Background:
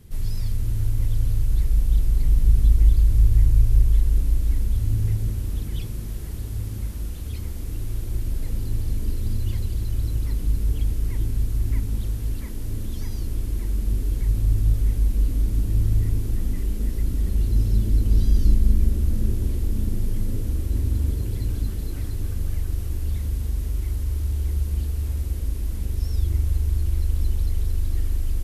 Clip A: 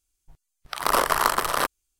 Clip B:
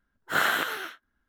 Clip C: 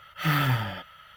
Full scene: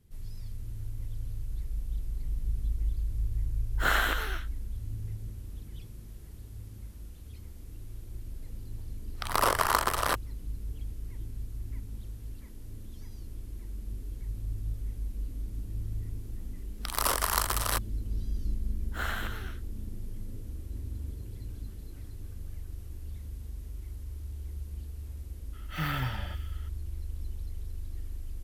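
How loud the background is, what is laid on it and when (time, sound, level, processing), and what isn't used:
background -15 dB
3.5 add B -2.5 dB
8.49 add A -4.5 dB
16.12 add A -10.5 dB + high shelf 3400 Hz +11.5 dB
18.64 add B -11 dB
25.53 add C -8 dB + delay with a stepping band-pass 0.126 s, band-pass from 2500 Hz, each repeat 0.7 oct, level -8.5 dB

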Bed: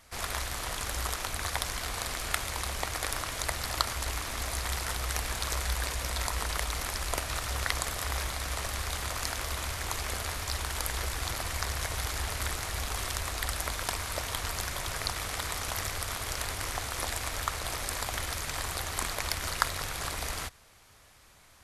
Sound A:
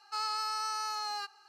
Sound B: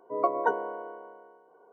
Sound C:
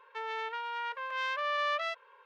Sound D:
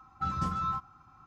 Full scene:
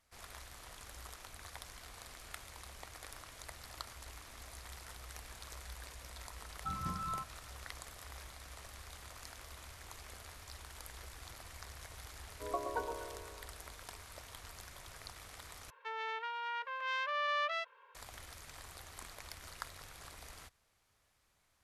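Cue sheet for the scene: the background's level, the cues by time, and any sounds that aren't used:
bed -17.5 dB
6.44 add D -8 dB
12.3 add B -12.5 dB + echo with dull and thin repeats by turns 0.122 s, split 1100 Hz, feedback 52%, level -6 dB
15.7 replace with C -2.5 dB + low shelf 350 Hz -8.5 dB
not used: A

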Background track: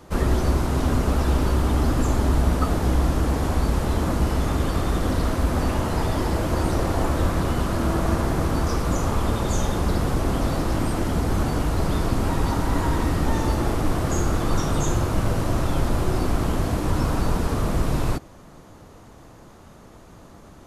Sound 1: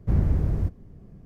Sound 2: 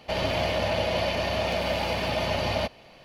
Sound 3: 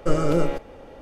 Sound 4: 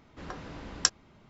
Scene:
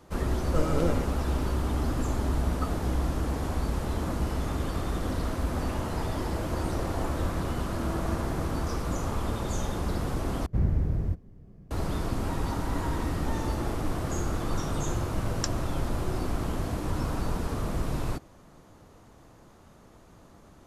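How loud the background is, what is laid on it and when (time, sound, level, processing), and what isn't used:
background track -7.5 dB
0.48 add 3 -6.5 dB
10.46 replace with 1 -3.5 dB
14.59 add 4 -8.5 dB
not used: 2

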